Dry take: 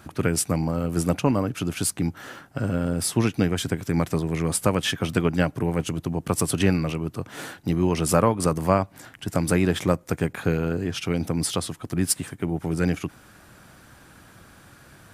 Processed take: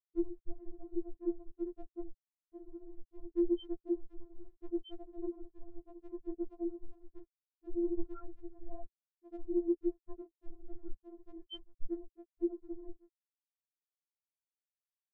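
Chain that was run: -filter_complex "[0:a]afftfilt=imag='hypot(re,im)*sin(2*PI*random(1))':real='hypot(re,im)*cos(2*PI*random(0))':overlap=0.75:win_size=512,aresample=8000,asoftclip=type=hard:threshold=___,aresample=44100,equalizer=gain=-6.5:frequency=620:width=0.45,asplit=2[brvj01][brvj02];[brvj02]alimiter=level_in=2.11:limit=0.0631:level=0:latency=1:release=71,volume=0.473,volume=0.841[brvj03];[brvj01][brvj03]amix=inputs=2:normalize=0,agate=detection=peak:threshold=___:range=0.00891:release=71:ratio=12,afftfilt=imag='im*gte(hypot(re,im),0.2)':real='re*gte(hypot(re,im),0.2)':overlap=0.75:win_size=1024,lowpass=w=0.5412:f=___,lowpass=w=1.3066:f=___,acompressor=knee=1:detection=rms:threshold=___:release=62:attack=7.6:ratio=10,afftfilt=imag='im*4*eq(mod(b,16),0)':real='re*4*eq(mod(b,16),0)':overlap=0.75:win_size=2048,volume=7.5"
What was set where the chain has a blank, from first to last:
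0.0841, 0.00398, 2.1k, 2.1k, 0.00708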